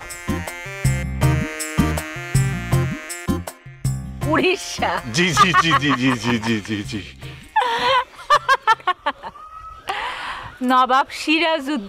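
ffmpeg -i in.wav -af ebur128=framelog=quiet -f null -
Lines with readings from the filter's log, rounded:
Integrated loudness:
  I:         -19.7 LUFS
  Threshold: -30.0 LUFS
Loudness range:
  LRA:         4.0 LU
  Threshold: -39.9 LUFS
  LRA low:   -22.2 LUFS
  LRA high:  -18.2 LUFS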